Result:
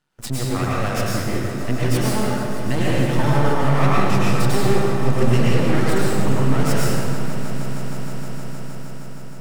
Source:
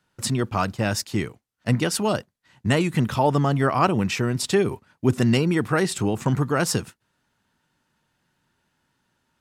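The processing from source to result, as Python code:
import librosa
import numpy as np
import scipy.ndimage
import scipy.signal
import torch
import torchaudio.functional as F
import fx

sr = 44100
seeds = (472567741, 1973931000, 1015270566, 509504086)

y = scipy.signal.sosfilt(scipy.signal.butter(2, 95.0, 'highpass', fs=sr, output='sos'), x)
y = fx.peak_eq(y, sr, hz=140.0, db=6.0, octaves=0.44)
y = np.maximum(y, 0.0)
y = fx.echo_swell(y, sr, ms=156, loudest=5, wet_db=-17.0)
y = fx.rev_plate(y, sr, seeds[0], rt60_s=2.3, hf_ratio=0.55, predelay_ms=90, drr_db=-6.5)
y = F.gain(torch.from_numpy(y), -1.0).numpy()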